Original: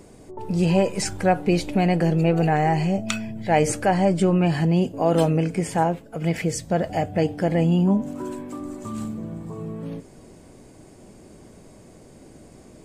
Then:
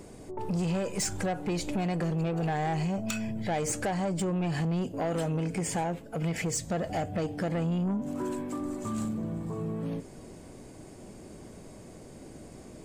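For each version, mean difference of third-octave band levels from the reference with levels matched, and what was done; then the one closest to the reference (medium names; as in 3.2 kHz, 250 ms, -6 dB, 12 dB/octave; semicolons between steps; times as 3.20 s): 5.5 dB: dynamic bell 7.1 kHz, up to +7 dB, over -51 dBFS, Q 2.1; compression 4:1, threshold -24 dBFS, peak gain reduction 9.5 dB; saturation -24.5 dBFS, distortion -13 dB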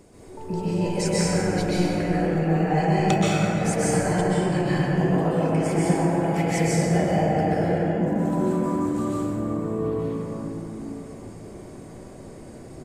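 8.0 dB: compressor with a negative ratio -22 dBFS, ratio -0.5; speakerphone echo 110 ms, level -12 dB; plate-style reverb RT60 4.3 s, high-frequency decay 0.3×, pre-delay 115 ms, DRR -10 dB; trim -8 dB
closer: first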